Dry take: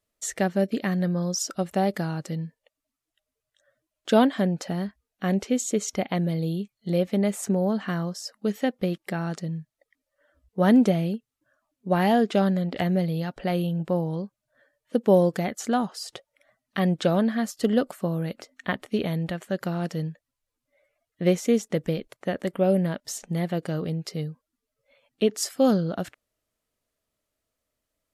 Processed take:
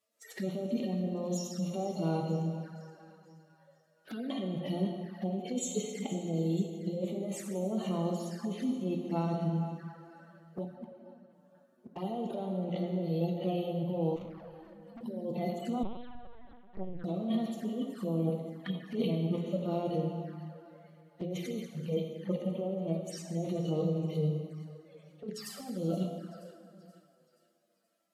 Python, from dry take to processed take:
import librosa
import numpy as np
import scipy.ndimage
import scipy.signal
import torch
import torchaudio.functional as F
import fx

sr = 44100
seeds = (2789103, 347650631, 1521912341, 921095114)

y = fx.hpss_only(x, sr, part='harmonic')
y = fx.over_compress(y, sr, threshold_db=-30.0, ratio=-1.0)
y = fx.gate_flip(y, sr, shuts_db=-29.0, range_db=-33, at=(10.64, 11.96))
y = scipy.signal.sosfilt(scipy.signal.butter(2, 230.0, 'highpass', fs=sr, output='sos'), y)
y = fx.rev_plate(y, sr, seeds[0], rt60_s=2.4, hf_ratio=0.65, predelay_ms=0, drr_db=1.5)
y = fx.tube_stage(y, sr, drive_db=41.0, bias=0.3, at=(14.16, 15.01))
y = fx.echo_thinned(y, sr, ms=476, feedback_pct=47, hz=460.0, wet_db=-16)
y = fx.lpc_vocoder(y, sr, seeds[1], excitation='pitch_kept', order=8, at=(15.83, 17.04))
y = fx.env_flanger(y, sr, rest_ms=9.2, full_db=-32.0)